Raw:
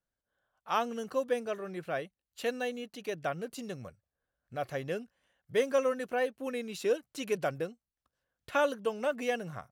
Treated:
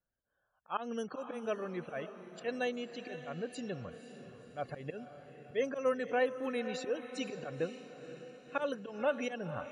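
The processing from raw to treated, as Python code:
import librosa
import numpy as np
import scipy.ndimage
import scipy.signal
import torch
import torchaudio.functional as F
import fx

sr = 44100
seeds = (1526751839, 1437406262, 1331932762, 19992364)

y = fx.auto_swell(x, sr, attack_ms=141.0)
y = fx.spec_topn(y, sr, count=64)
y = fx.echo_diffused(y, sr, ms=514, feedback_pct=52, wet_db=-11.0)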